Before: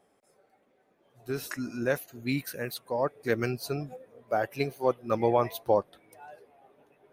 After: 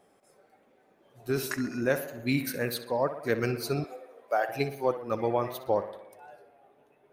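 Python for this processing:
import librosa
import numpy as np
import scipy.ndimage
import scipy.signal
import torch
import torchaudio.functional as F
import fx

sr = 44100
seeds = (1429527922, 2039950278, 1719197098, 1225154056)

y = fx.echo_tape(x, sr, ms=63, feedback_pct=71, wet_db=-10, lp_hz=3700.0, drive_db=16.0, wow_cents=40)
y = fx.rider(y, sr, range_db=10, speed_s=0.5)
y = fx.highpass(y, sr, hz=540.0, slope=12, at=(3.84, 4.49))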